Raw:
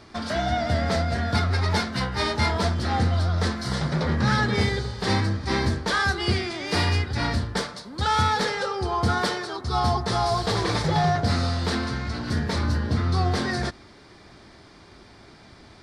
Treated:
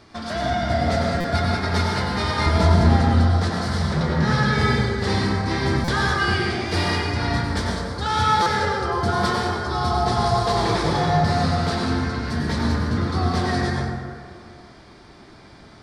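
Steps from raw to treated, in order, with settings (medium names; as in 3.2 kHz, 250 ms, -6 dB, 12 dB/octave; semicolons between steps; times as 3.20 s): 2.46–2.97 s: bass shelf 310 Hz +10 dB; reverberation RT60 2.0 s, pre-delay 83 ms, DRR -2 dB; buffer glitch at 1.20/5.84/8.42 s, samples 256, times 6; trim -1.5 dB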